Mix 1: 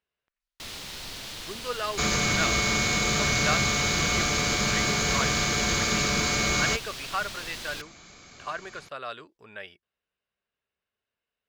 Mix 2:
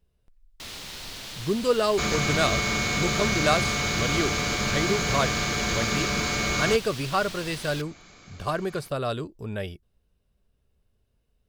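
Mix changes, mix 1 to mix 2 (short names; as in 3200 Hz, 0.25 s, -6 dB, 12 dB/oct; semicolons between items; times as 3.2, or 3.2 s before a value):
speech: remove band-pass 1900 Hz, Q 1.1; second sound: add high shelf 4900 Hz -6 dB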